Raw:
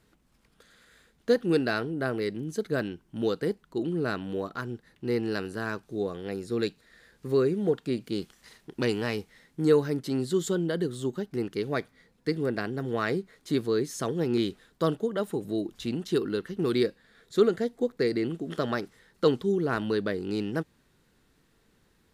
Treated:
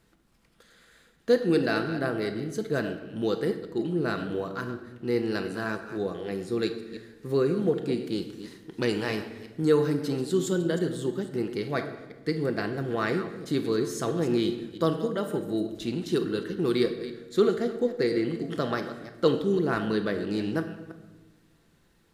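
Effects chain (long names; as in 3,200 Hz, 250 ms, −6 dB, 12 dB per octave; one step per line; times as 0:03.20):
delay that plays each chunk backwards 166 ms, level −12 dB
on a send: low-shelf EQ 170 Hz −9 dB + convolution reverb RT60 1.2 s, pre-delay 6 ms, DRR 6.5 dB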